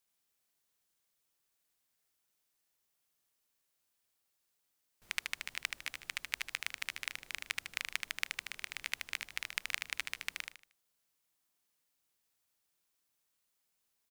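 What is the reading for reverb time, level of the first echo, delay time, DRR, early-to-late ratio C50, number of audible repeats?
none, -5.0 dB, 77 ms, none, none, 4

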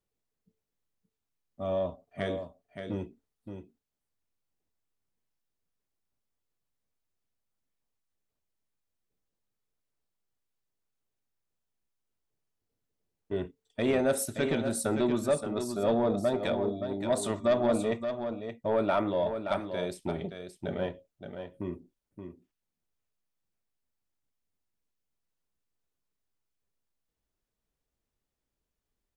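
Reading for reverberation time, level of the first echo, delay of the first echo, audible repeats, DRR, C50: none, -8.0 dB, 0.573 s, 1, none, none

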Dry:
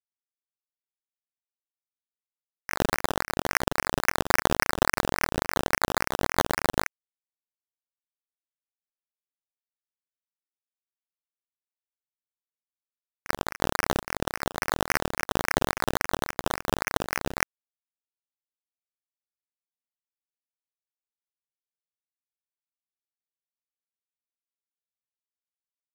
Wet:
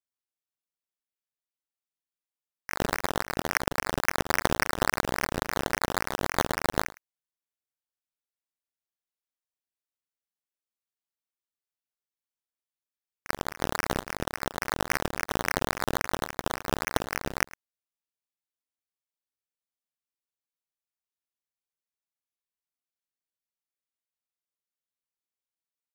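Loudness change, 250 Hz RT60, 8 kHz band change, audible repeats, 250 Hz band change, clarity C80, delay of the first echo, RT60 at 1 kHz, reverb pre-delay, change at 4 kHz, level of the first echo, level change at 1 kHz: -2.0 dB, none, -2.0 dB, 1, -2.0 dB, none, 0.107 s, none, none, -2.0 dB, -20.0 dB, -2.0 dB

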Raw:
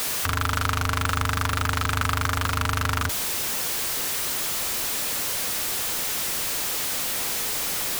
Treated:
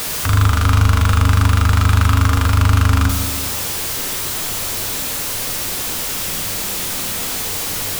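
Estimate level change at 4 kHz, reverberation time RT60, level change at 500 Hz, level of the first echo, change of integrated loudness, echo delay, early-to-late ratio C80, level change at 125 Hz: +4.5 dB, 1.5 s, +5.5 dB, none, +7.5 dB, none, 9.0 dB, +14.5 dB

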